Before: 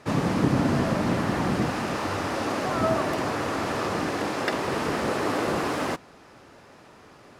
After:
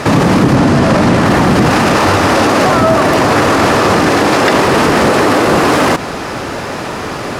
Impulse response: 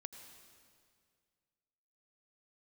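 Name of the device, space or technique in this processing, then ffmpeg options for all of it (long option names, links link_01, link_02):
loud club master: -filter_complex "[0:a]acompressor=threshold=-26dB:ratio=2.5,asoftclip=type=hard:threshold=-19.5dB,alimiter=level_in=31dB:limit=-1dB:release=50:level=0:latency=1,asettb=1/sr,asplit=3[link_01][link_02][link_03];[link_01]atrim=end=0.554[link_04];[link_02]atrim=start=0.55:end=1.26,asetpts=PTS-STARTPTS,afade=type=in:duration=0.004:curve=qsin,afade=type=out:start_time=0.706:duration=0.004:curve=qsin,lowpass=11000[link_05];[link_03]atrim=start=1.256[link_06];[link_04][link_05]acrossfade=duration=0.004:curve1=hsin:curve2=qsin[link_07];[link_07][link_06]acrossfade=duration=0.004:curve1=qsin:curve2=hsin,volume=-1dB"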